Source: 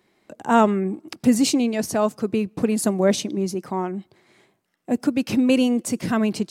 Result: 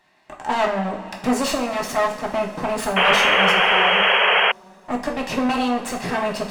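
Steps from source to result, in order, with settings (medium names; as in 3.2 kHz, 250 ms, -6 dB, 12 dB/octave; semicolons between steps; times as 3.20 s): comb filter that takes the minimum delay 1.1 ms; overdrive pedal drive 18 dB, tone 2.6 kHz, clips at -8 dBFS; two-slope reverb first 0.45 s, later 4.9 s, from -19 dB, DRR 0.5 dB; painted sound noise, 2.96–4.52 s, 380–3300 Hz -12 dBFS; trim -4.5 dB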